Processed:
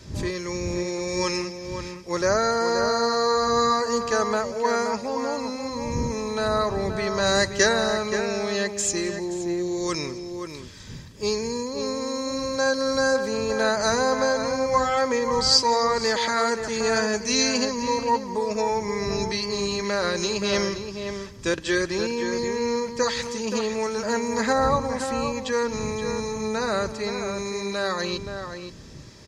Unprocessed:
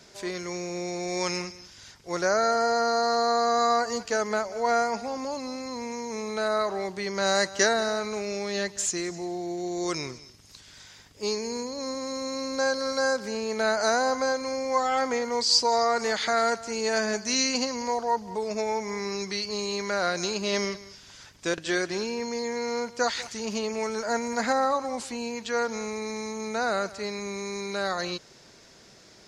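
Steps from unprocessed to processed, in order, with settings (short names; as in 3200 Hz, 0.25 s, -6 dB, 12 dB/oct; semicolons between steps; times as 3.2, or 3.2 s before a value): wind noise 120 Hz -42 dBFS; notch comb 720 Hz; outdoor echo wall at 90 m, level -7 dB; gain +4 dB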